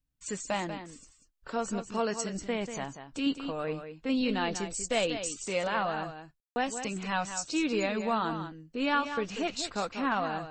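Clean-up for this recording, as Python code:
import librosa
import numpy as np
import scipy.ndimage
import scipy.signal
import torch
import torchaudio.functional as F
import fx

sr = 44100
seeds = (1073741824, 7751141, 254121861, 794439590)

y = fx.fix_ambience(x, sr, seeds[0], print_start_s=0.96, print_end_s=1.46, start_s=6.4, end_s=6.56)
y = fx.fix_echo_inverse(y, sr, delay_ms=190, level_db=-9.5)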